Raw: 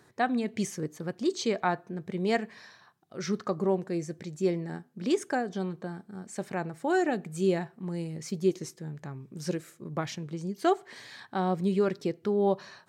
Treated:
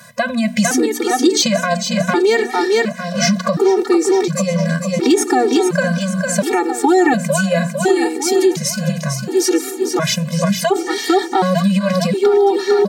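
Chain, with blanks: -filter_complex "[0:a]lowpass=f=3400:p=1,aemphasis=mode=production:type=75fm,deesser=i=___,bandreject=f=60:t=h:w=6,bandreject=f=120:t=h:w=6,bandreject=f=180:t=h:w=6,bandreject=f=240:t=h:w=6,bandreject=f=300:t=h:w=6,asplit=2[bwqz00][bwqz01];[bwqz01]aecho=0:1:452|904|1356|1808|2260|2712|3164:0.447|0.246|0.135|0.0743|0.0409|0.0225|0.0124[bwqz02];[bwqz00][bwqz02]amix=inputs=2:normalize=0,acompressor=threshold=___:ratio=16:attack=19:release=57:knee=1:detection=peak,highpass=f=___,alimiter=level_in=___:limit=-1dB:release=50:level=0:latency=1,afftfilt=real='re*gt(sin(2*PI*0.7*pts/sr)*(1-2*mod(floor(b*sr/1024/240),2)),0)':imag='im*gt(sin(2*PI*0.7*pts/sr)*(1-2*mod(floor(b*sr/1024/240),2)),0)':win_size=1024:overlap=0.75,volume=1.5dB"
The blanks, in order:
0.7, -33dB, 170, 22dB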